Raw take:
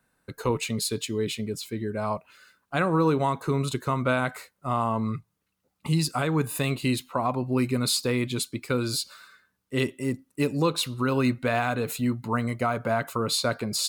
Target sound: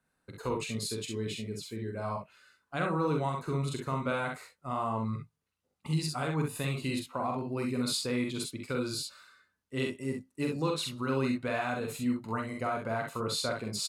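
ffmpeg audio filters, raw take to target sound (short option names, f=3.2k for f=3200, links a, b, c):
-filter_complex "[0:a]lowpass=11k,asplit=2[a][b];[b]aecho=0:1:45|65:0.631|0.531[c];[a][c]amix=inputs=2:normalize=0,volume=-8.5dB"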